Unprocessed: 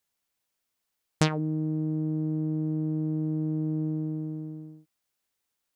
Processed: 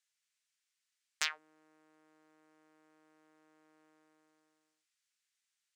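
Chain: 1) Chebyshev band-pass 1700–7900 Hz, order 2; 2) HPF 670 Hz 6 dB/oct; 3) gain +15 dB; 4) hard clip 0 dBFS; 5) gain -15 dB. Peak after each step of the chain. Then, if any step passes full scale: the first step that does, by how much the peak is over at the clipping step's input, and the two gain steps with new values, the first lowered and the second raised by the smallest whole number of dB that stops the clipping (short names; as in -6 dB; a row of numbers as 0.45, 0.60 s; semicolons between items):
-10.0, -11.5, +3.5, 0.0, -15.0 dBFS; step 3, 3.5 dB; step 3 +11 dB, step 5 -11 dB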